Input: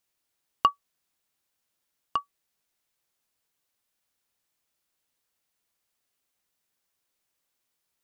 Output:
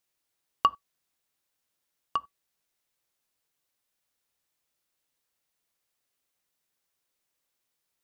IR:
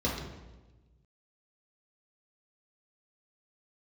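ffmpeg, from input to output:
-filter_complex "[0:a]asplit=2[a][b];[1:a]atrim=start_sample=2205,atrim=end_sample=4410[c];[b][c]afir=irnorm=-1:irlink=0,volume=-27.5dB[d];[a][d]amix=inputs=2:normalize=0,volume=-1.5dB"

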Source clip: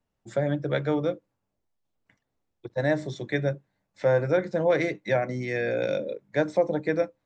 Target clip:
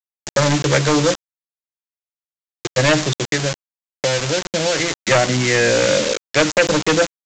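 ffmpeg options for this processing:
-filter_complex "[0:a]acrossover=split=2700[a][b];[b]acompressor=threshold=-55dB:ratio=4:attack=1:release=60[c];[a][c]amix=inputs=2:normalize=0,lowshelf=f=420:g=7,asettb=1/sr,asplit=3[d][e][f];[d]atrim=end=3.134[g];[e]atrim=start=3.13:end=5.11,asetpts=PTS-STARTPTS,afade=t=in:d=0.004:c=qsin,afade=t=out:st=1.976:d=0.004:c=qsin,acompressor=threshold=-27dB:ratio=5[h];[f]atrim=start=5.106[i];[g][h]acrossfade=d=0.004:c1=hsin:c2=qsin[j];[j][i]acrossfade=d=0.004:c1=qsin:c2=hsin,aeval=exprs='0.398*(cos(1*acos(clip(val(0)/0.398,-1,1)))-cos(1*PI/2))+0.02*(cos(3*acos(clip(val(0)/0.398,-1,1)))-cos(3*PI/2))+0.158*(cos(5*acos(clip(val(0)/0.398,-1,1)))-cos(5*PI/2))+0.00251*(cos(6*acos(clip(val(0)/0.398,-1,1)))-cos(6*PI/2))+0.00631*(cos(8*acos(clip(val(0)/0.398,-1,1)))-cos(8*PI/2))':c=same,aeval=exprs='val(0)*gte(abs(val(0)),0.0631)':c=same,crystalizer=i=9.5:c=0,aresample=16000,aresample=44100,volume=-1.5dB"

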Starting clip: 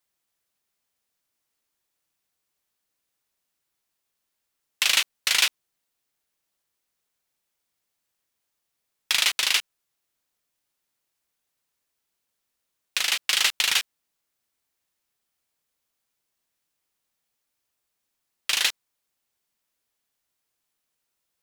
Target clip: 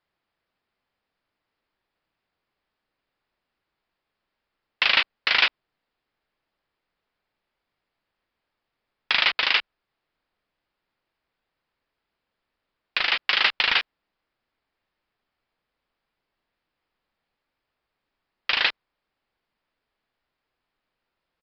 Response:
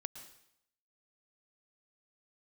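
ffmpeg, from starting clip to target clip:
-filter_complex "[0:a]asplit=2[a][b];[b]asubboost=boost=3.5:cutoff=50[c];[1:a]atrim=start_sample=2205,atrim=end_sample=4410,lowpass=2.7k[d];[c][d]afir=irnorm=-1:irlink=0,volume=5dB[e];[a][e]amix=inputs=2:normalize=0,aresample=11025,aresample=44100"

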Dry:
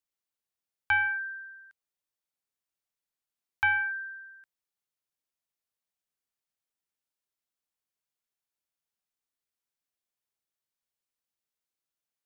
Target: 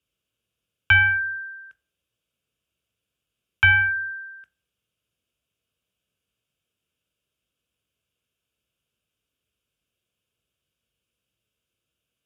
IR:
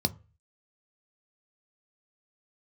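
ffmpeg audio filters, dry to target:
-filter_complex "[1:a]atrim=start_sample=2205,afade=t=out:st=0.27:d=0.01,atrim=end_sample=12348,asetrate=27783,aresample=44100[a];[0:a][a]afir=irnorm=-1:irlink=0"

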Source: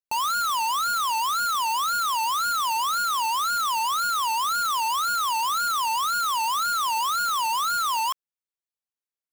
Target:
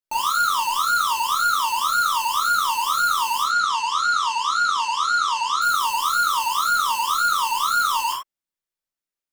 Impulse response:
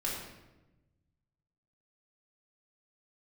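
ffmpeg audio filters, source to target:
-filter_complex "[0:a]asettb=1/sr,asplit=3[a][b][c];[a]atrim=end=3.424[d];[b]atrim=start=3.42:end=5.62,asetpts=PTS-STARTPTS,afade=t=in:d=0.004:c=qsin,afade=t=out:st=2.196:d=0.004:c=qsin,highpass=f=130:w=0.5412,highpass=f=130:w=1.3066,equalizer=f=140:t=q:w=4:g=-6,equalizer=f=310:t=q:w=4:g=-7,equalizer=f=640:t=q:w=4:g=-6,lowpass=f=7.1k:w=0.5412,lowpass=f=7.1k:w=1.3066[e];[c]atrim=start=5.616[f];[d][e]acrossfade=d=0.004:c1=hsin:c2=qsin[g];[g][f]acrossfade=d=0.004:c1=qsin:c2=hsin[h];[1:a]atrim=start_sample=2205,afade=t=out:st=0.15:d=0.01,atrim=end_sample=7056[i];[h][i]afir=irnorm=-1:irlink=0"

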